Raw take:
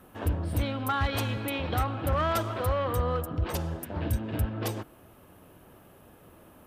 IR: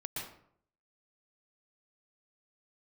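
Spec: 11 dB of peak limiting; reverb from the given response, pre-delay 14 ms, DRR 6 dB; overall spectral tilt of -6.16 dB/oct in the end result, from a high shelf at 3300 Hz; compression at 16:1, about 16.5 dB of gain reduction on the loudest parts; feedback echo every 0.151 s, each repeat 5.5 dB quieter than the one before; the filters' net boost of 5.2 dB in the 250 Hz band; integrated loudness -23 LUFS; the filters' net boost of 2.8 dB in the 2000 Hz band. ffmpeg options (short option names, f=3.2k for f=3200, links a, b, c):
-filter_complex "[0:a]equalizer=f=250:t=o:g=6.5,equalizer=f=2k:t=o:g=5,highshelf=f=3.3k:g=-4.5,acompressor=threshold=-38dB:ratio=16,alimiter=level_in=15.5dB:limit=-24dB:level=0:latency=1,volume=-15.5dB,aecho=1:1:151|302|453|604|755|906|1057:0.531|0.281|0.149|0.079|0.0419|0.0222|0.0118,asplit=2[a][b];[1:a]atrim=start_sample=2205,adelay=14[c];[b][c]afir=irnorm=-1:irlink=0,volume=-7dB[d];[a][d]amix=inputs=2:normalize=0,volume=22.5dB"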